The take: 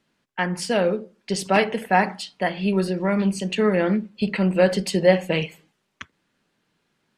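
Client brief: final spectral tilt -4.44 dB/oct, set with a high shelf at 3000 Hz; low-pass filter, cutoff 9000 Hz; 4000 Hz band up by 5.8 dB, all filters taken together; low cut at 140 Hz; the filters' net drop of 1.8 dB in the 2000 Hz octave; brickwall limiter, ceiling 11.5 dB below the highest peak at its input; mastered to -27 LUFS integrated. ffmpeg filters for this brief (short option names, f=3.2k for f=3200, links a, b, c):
-af "highpass=140,lowpass=9k,equalizer=f=2k:t=o:g=-6,highshelf=f=3k:g=7,equalizer=f=4k:t=o:g=4.5,volume=-1dB,alimiter=limit=-16.5dB:level=0:latency=1"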